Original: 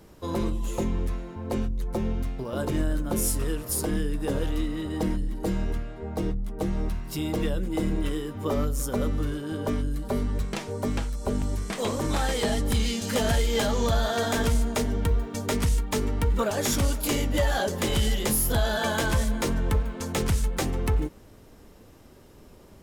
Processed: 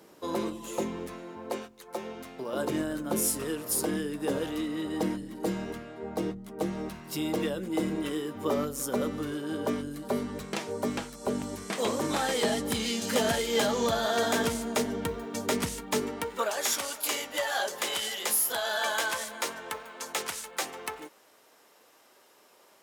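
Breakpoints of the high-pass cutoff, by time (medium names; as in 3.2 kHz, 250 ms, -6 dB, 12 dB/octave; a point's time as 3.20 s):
1.33 s 270 Hz
1.75 s 700 Hz
2.76 s 210 Hz
15.97 s 210 Hz
16.55 s 720 Hz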